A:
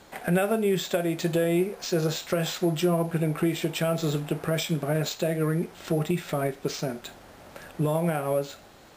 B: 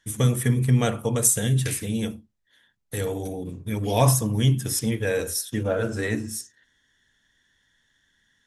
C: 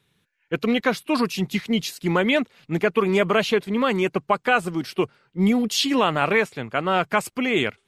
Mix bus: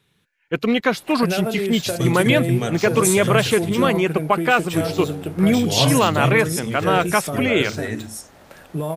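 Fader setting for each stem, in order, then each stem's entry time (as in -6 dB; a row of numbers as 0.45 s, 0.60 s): 0.0 dB, -1.5 dB, +2.5 dB; 0.95 s, 1.80 s, 0.00 s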